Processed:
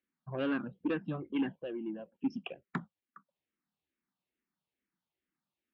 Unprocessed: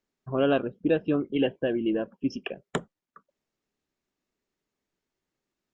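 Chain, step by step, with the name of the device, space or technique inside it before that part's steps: barber-pole phaser into a guitar amplifier (barber-pole phaser -2.3 Hz; saturation -20.5 dBFS, distortion -16 dB; cabinet simulation 76–4000 Hz, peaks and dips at 110 Hz -7 dB, 190 Hz +3 dB, 420 Hz -9 dB, 620 Hz -6 dB); 1.62–2.15 s: ten-band graphic EQ 125 Hz -11 dB, 250 Hz -4 dB, 1 kHz -11 dB, 2 kHz -4 dB, 4 kHz -9 dB; trim -2 dB

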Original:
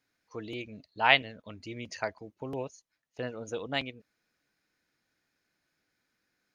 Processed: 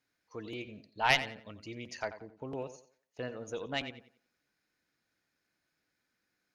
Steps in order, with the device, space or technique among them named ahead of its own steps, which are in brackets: rockabilly slapback (valve stage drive 11 dB, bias 0.6; tape echo 89 ms, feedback 32%, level -12 dB, low-pass 4.9 kHz); 2.05–2.55 s: distance through air 74 m

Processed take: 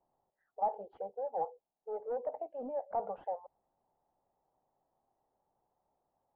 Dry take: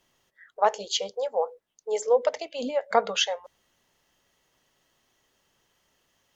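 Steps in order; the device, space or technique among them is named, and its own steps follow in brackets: overdriven synthesiser ladder filter (saturation -24.5 dBFS, distortion -6 dB; four-pole ladder low-pass 870 Hz, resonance 70%)

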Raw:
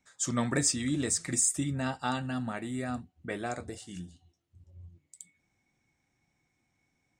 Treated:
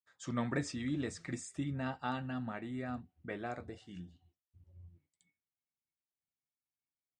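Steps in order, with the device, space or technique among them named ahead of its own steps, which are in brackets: hearing-loss simulation (low-pass 3.2 kHz 12 dB/octave; expander -60 dBFS); trim -5.5 dB

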